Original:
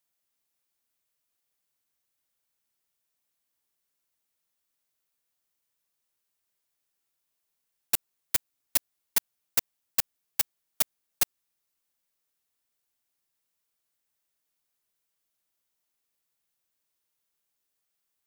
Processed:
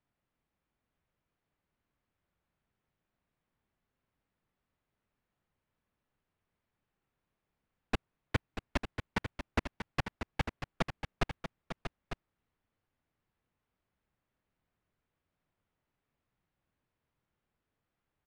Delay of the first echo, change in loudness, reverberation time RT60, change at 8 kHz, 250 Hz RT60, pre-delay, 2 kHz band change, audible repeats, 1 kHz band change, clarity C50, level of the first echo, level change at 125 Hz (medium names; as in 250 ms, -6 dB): 637 ms, -10.0 dB, no reverb, -24.0 dB, no reverb, no reverb, +1.0 dB, 2, +5.0 dB, no reverb, -9.0 dB, +15.5 dB